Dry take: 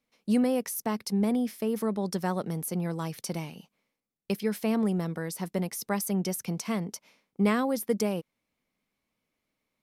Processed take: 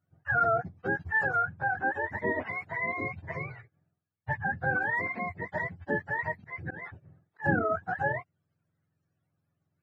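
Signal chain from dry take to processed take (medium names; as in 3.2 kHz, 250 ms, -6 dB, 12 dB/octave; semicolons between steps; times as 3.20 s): spectrum inverted on a logarithmic axis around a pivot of 590 Hz; 6.38–7.46 s: slow attack 191 ms; trim +1.5 dB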